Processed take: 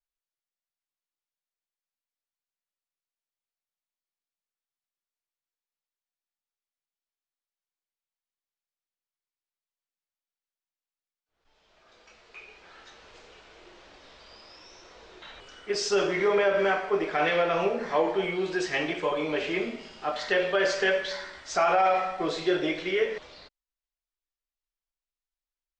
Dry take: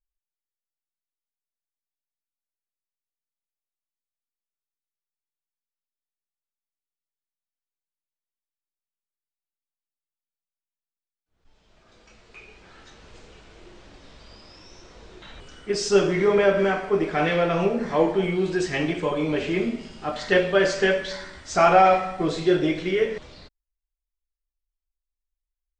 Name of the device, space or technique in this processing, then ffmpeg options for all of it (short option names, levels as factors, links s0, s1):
DJ mixer with the lows and highs turned down: -filter_complex "[0:a]acrossover=split=390 7300:gain=0.224 1 0.126[s0][s1][s2];[s0][s1][s2]amix=inputs=3:normalize=0,alimiter=limit=0.188:level=0:latency=1:release=54"